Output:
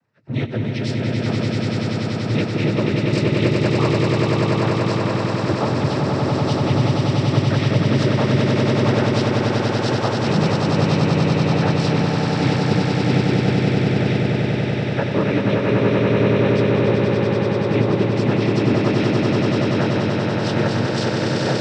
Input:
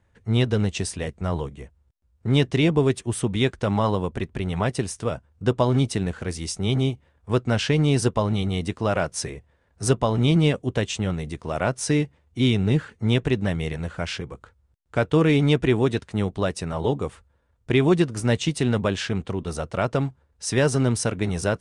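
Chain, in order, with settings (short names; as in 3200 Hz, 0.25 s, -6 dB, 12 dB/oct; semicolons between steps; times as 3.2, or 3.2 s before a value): nonlinear frequency compression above 1600 Hz 1.5:1; noise vocoder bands 12; swelling echo 96 ms, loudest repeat 8, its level -4 dB; gain -2 dB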